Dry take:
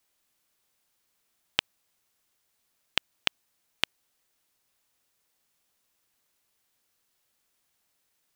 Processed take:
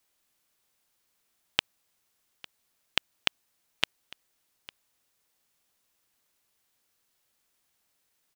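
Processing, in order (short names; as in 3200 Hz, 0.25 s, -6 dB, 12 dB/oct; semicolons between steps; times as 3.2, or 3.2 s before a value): echo 0.853 s -21 dB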